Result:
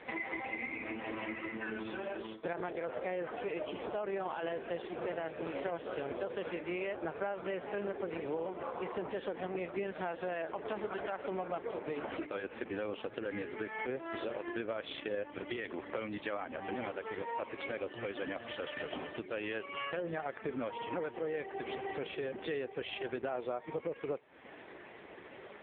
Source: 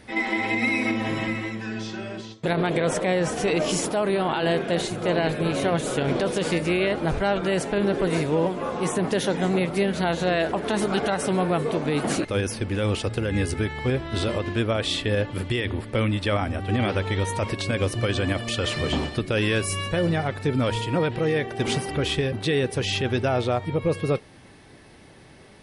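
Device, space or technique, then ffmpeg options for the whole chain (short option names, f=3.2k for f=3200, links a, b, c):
voicemail: -filter_complex "[0:a]asplit=3[a][b][c];[a]afade=t=out:st=10.85:d=0.02[d];[b]bandreject=f=50:t=h:w=6,bandreject=f=100:t=h:w=6,bandreject=f=150:t=h:w=6,bandreject=f=200:t=h:w=6,bandreject=f=250:t=h:w=6,bandreject=f=300:t=h:w=6,bandreject=f=350:t=h:w=6,bandreject=f=400:t=h:w=6,bandreject=f=450:t=h:w=6,bandreject=f=500:t=h:w=6,afade=t=in:st=10.85:d=0.02,afade=t=out:st=12.42:d=0.02[e];[c]afade=t=in:st=12.42:d=0.02[f];[d][e][f]amix=inputs=3:normalize=0,highpass=350,lowpass=2.8k,acompressor=threshold=-40dB:ratio=8,volume=6dB" -ar 8000 -c:a libopencore_amrnb -b:a 4750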